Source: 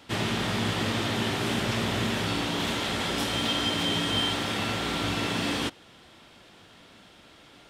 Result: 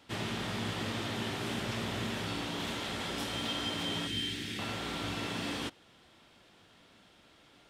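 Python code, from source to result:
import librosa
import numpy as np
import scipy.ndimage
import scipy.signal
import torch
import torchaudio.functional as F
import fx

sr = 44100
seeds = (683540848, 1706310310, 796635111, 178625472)

y = fx.band_shelf(x, sr, hz=820.0, db=-16.0, octaves=1.7, at=(4.07, 4.59))
y = y * 10.0 ** (-8.0 / 20.0)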